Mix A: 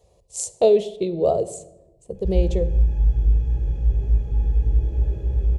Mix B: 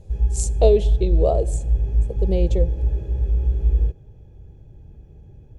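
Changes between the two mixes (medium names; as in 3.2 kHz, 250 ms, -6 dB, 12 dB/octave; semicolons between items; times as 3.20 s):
speech: send -6.0 dB; background: entry -2.15 s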